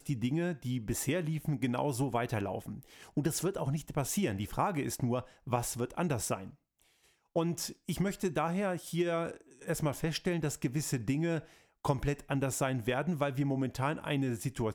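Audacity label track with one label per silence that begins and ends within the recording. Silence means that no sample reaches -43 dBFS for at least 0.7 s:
6.500000	7.360000	silence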